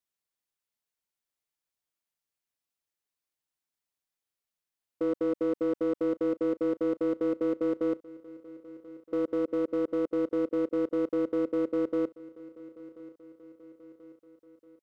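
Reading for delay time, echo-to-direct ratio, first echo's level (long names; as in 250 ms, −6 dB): 1,034 ms, −18.5 dB, −20.0 dB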